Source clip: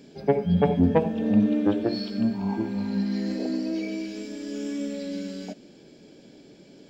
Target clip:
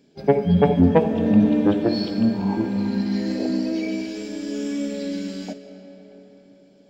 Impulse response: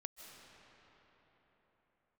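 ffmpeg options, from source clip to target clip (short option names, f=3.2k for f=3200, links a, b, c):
-filter_complex "[0:a]agate=range=-13dB:threshold=-39dB:ratio=16:detection=peak,asplit=2[a][b];[1:a]atrim=start_sample=2205[c];[b][c]afir=irnorm=-1:irlink=0,volume=2dB[d];[a][d]amix=inputs=2:normalize=0"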